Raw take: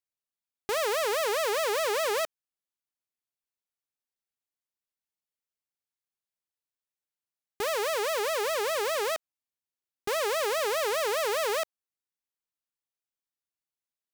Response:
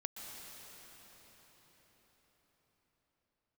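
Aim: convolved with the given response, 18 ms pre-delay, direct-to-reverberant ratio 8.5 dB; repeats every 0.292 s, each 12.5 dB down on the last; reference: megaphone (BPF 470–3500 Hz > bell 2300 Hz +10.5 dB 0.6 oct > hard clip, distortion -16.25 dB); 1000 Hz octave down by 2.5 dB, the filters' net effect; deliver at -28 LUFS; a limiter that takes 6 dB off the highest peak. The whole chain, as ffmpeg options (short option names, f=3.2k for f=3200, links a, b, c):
-filter_complex "[0:a]equalizer=f=1k:t=o:g=-4,alimiter=level_in=4.5dB:limit=-24dB:level=0:latency=1,volume=-4.5dB,aecho=1:1:292|584|876:0.237|0.0569|0.0137,asplit=2[a][b];[1:a]atrim=start_sample=2205,adelay=18[c];[b][c]afir=irnorm=-1:irlink=0,volume=-7.5dB[d];[a][d]amix=inputs=2:normalize=0,highpass=470,lowpass=3.5k,equalizer=f=2.3k:t=o:w=0.6:g=10.5,asoftclip=type=hard:threshold=-26.5dB,volume=6.5dB"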